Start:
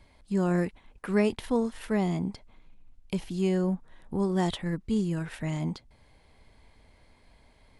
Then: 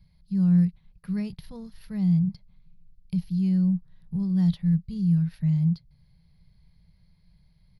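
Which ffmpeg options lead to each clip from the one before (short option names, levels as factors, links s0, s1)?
-af "firequalizer=gain_entry='entry(100,0);entry(170,12);entry(250,-21);entry(500,-18);entry(740,-19);entry(1900,-14);entry(3200,-13);entry(4500,-2);entry(7900,-28);entry(11000,-4)':delay=0.05:min_phase=1"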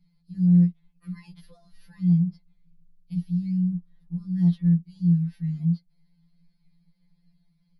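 -af "afftfilt=real='re*2.83*eq(mod(b,8),0)':imag='im*2.83*eq(mod(b,8),0)':win_size=2048:overlap=0.75,volume=0.631"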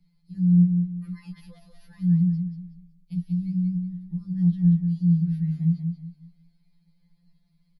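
-filter_complex "[0:a]acrossover=split=300[s0][s1];[s1]acompressor=threshold=0.00398:ratio=6[s2];[s0][s2]amix=inputs=2:normalize=0,aecho=1:1:186|372|558|744:0.501|0.155|0.0482|0.0149"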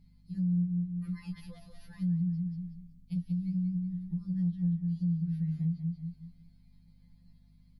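-af "acompressor=threshold=0.0282:ratio=3,aeval=exprs='val(0)+0.001*(sin(2*PI*50*n/s)+sin(2*PI*2*50*n/s)/2+sin(2*PI*3*50*n/s)/3+sin(2*PI*4*50*n/s)/4+sin(2*PI*5*50*n/s)/5)':c=same"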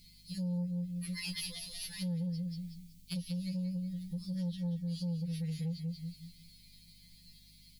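-af "aexciter=amount=12.9:drive=5.4:freq=2100,aeval=exprs='0.0891*(cos(1*acos(clip(val(0)/0.0891,-1,1)))-cos(1*PI/2))+0.01*(cos(5*acos(clip(val(0)/0.0891,-1,1)))-cos(5*PI/2))':c=same,volume=0.473"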